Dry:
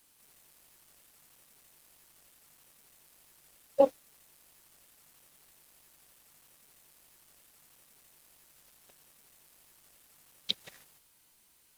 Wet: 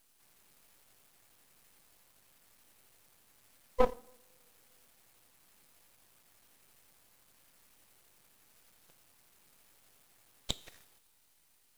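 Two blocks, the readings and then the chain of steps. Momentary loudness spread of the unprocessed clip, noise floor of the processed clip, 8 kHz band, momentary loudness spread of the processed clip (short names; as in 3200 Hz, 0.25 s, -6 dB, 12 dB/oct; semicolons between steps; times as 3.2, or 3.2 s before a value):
14 LU, -69 dBFS, +0.5 dB, 21 LU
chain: two-slope reverb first 0.57 s, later 3.3 s, from -27 dB, DRR 14.5 dB; frequency shift -49 Hz; half-wave rectifier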